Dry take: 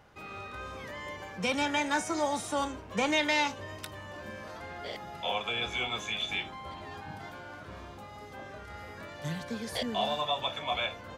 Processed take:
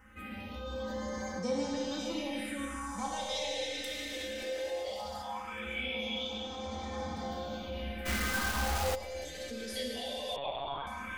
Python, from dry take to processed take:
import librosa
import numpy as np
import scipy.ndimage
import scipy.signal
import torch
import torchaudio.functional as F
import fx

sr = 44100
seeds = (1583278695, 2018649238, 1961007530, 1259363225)

p1 = fx.comb_fb(x, sr, f0_hz=74.0, decay_s=0.16, harmonics='odd', damping=0.0, mix_pct=80)
p2 = fx.rev_schroeder(p1, sr, rt60_s=3.1, comb_ms=25, drr_db=-1.5)
p3 = fx.over_compress(p2, sr, threshold_db=-47.0, ratio=-1.0)
p4 = p2 + (p3 * 10.0 ** (1.0 / 20.0))
p5 = fx.low_shelf_res(p4, sr, hz=200.0, db=-14.0, q=1.5, at=(4.42, 4.88))
p6 = p5 + fx.echo_feedback(p5, sr, ms=579, feedback_pct=56, wet_db=-12.5, dry=0)
p7 = fx.phaser_stages(p6, sr, stages=4, low_hz=160.0, high_hz=2600.0, hz=0.18, feedback_pct=30)
p8 = p7 + 0.97 * np.pad(p7, (int(3.9 * sr / 1000.0), 0))[:len(p7)]
p9 = fx.quant_companded(p8, sr, bits=2, at=(8.05, 8.94), fade=0.02)
p10 = fx.lpc_monotone(p9, sr, seeds[0], pitch_hz=140.0, order=16, at=(10.36, 10.87))
y = p10 * 10.0 ** (-3.0 / 20.0)